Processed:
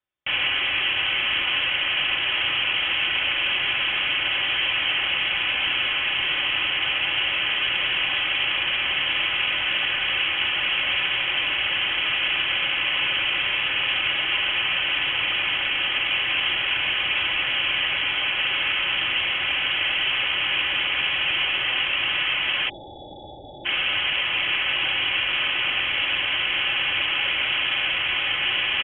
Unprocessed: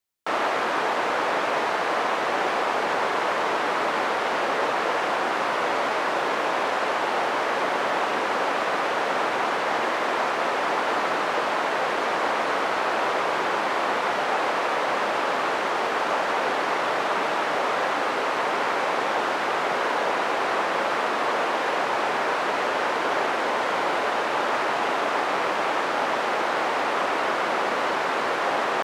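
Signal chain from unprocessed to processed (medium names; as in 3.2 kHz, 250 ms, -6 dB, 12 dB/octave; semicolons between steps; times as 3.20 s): comb 4.3 ms, depth 44%; spectral selection erased 22.69–23.66 s, 200–2700 Hz; frequency inversion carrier 3.6 kHz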